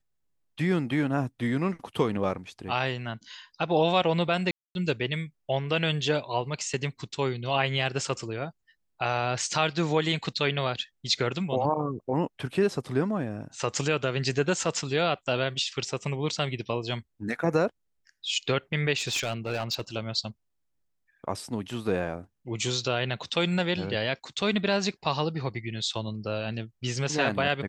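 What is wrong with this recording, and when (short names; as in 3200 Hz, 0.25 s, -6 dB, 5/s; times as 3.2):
4.51–4.75 gap 0.241 s
18.97–19.81 clipped -24 dBFS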